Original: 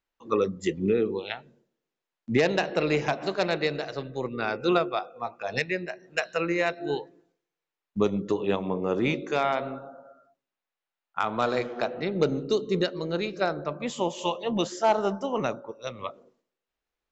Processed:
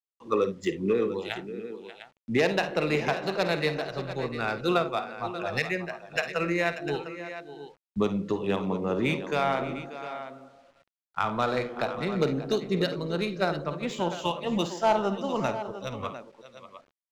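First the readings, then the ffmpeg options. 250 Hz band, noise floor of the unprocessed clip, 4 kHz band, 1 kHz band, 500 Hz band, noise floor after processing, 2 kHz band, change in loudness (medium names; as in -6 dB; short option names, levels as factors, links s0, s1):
-0.5 dB, under -85 dBFS, 0.0 dB, 0.0 dB, -1.0 dB, under -85 dBFS, +0.5 dB, -1.0 dB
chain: -filter_complex "[0:a]acrossover=split=170[s0][s1];[s0]acompressor=threshold=0.00398:ratio=6[s2];[s1]aecho=1:1:52|70|587|701:0.266|0.133|0.211|0.251[s3];[s2][s3]amix=inputs=2:normalize=0,asubboost=boost=3.5:cutoff=160,acrusher=bits=9:mix=0:aa=0.000001,adynamicsmooth=sensitivity=7.5:basefreq=5400"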